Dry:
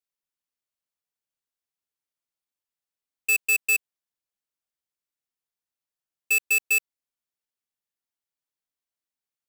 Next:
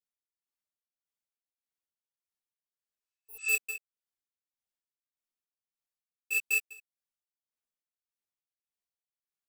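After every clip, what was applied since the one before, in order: spectral replace 3.01–3.49 s, 970–9000 Hz both; chorus voices 6, 1.1 Hz, delay 14 ms, depth 3 ms; tremolo 1.7 Hz, depth 95%; trim -2 dB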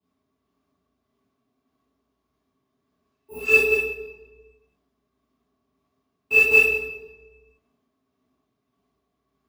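peak limiter -21 dBFS, peak gain reduction 4 dB; small resonant body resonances 270/400/630/1100 Hz, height 18 dB, ringing for 65 ms; reverberation RT60 1.2 s, pre-delay 3 ms, DRR -11.5 dB; trim -6 dB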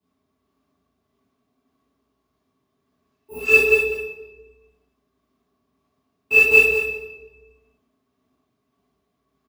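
delay 198 ms -9.5 dB; trim +2.5 dB

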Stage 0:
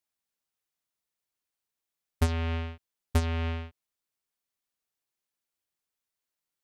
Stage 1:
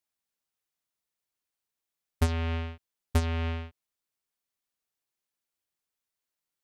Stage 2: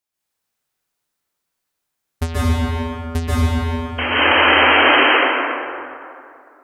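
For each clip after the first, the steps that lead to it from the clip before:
no audible change
painted sound noise, 3.98–5.04 s, 250–3200 Hz -24 dBFS; plate-style reverb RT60 2.5 s, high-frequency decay 0.5×, pre-delay 120 ms, DRR -9 dB; trim +2.5 dB

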